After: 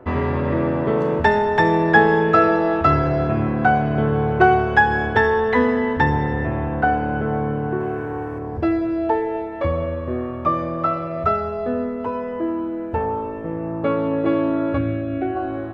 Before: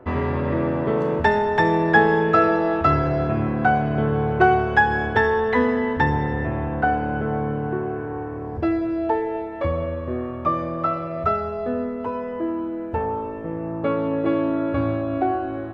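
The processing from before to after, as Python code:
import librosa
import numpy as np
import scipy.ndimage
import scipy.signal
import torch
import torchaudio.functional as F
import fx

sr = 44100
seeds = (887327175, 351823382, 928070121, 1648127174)

y = fx.high_shelf(x, sr, hz=2900.0, db=10.0, at=(7.8, 8.39))
y = fx.fixed_phaser(y, sr, hz=2300.0, stages=4, at=(14.77, 15.35), fade=0.02)
y = y * 10.0 ** (2.0 / 20.0)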